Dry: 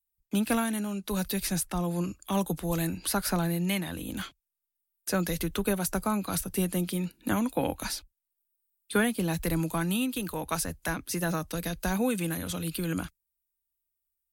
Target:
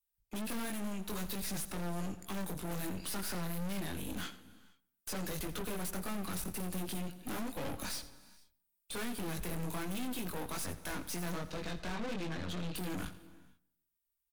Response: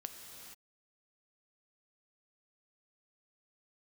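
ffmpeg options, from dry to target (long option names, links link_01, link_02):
-filter_complex "[0:a]asettb=1/sr,asplit=3[link_01][link_02][link_03];[link_01]atrim=end=11.344[link_04];[link_02]atrim=start=11.34:end=12.76,asetpts=PTS-STARTPTS,afade=type=in:duration=0.004:curve=qsin,afade=type=out:start_time=1.416:duration=0.004:curve=qsin,lowpass=frequency=4800:width=0.5412,lowpass=frequency=4800:width=1.3066[link_05];[link_03]atrim=start=12.756[link_06];[link_04][link_05]acrossfade=duration=0.004:curve1=hsin:curve2=qsin[link_07];[link_07][link_06]acrossfade=duration=0.004:curve1=qsin:curve2=hsin,flanger=delay=20:depth=3.1:speed=1.3,aeval=exprs='(tanh(158*val(0)+0.8)-tanh(0.8))/158':channel_layout=same,asplit=2[link_08][link_09];[link_09]adelay=146,lowpass=frequency=1700:poles=1,volume=-20dB,asplit=2[link_10][link_11];[link_11]adelay=146,lowpass=frequency=1700:poles=1,volume=0.36,asplit=2[link_12][link_13];[link_13]adelay=146,lowpass=frequency=1700:poles=1,volume=0.36[link_14];[link_08][link_10][link_12][link_14]amix=inputs=4:normalize=0,asplit=2[link_15][link_16];[1:a]atrim=start_sample=2205,asetrate=52920,aresample=44100,adelay=86[link_17];[link_16][link_17]afir=irnorm=-1:irlink=0,volume=-9.5dB[link_18];[link_15][link_18]amix=inputs=2:normalize=0,volume=6dB"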